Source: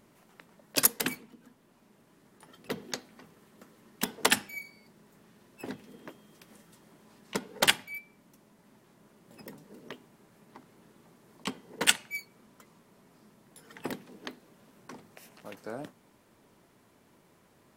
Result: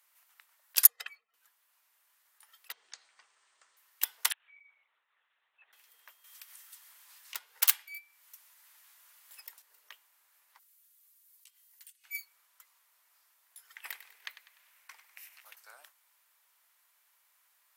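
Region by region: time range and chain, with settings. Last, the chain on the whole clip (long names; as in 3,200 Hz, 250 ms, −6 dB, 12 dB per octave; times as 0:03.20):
0:00.87–0:01.34: expanding power law on the bin magnitudes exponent 1.6 + head-to-tape spacing loss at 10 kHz 20 dB + comb filter 1.6 ms, depth 90%
0:02.72–0:03.77: low-shelf EQ 430 Hz +11.5 dB + downward compressor 2.5 to 1, threshold −40 dBFS + linear-phase brick-wall band-pass 180–9,200 Hz
0:04.32–0:05.73: downward compressor 5 to 1, threshold −49 dBFS + high-frequency loss of the air 120 metres + linear-prediction vocoder at 8 kHz whisper
0:06.24–0:09.62: phase distortion by the signal itself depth 0.65 ms + one half of a high-frequency compander encoder only
0:10.59–0:12.04: first-order pre-emphasis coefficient 0.97 + comb filter 5.9 ms, depth 59% + downward compressor 12 to 1, threshold −53 dBFS
0:13.76–0:15.45: parametric band 2,200 Hz +8.5 dB 0.82 octaves + repeating echo 99 ms, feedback 43%, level −13 dB
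whole clip: Bessel high-pass filter 1,500 Hz, order 4; parametric band 14,000 Hz +12 dB 0.63 octaves; level −3.5 dB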